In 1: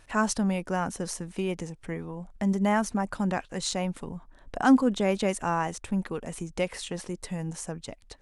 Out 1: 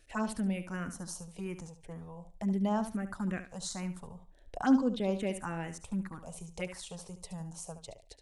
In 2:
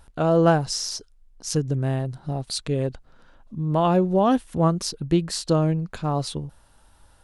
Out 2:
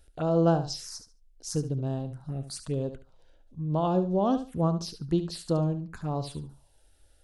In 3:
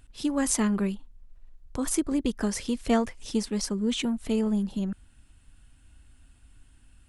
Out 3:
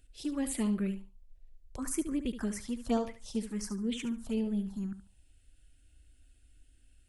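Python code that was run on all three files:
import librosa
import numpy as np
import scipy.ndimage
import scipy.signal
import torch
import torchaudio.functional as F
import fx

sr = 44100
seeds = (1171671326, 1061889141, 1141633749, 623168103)

p1 = fx.env_phaser(x, sr, low_hz=160.0, high_hz=2100.0, full_db=-19.5)
p2 = p1 + fx.echo_feedback(p1, sr, ms=72, feedback_pct=20, wet_db=-11, dry=0)
y = p2 * librosa.db_to_amplitude(-5.5)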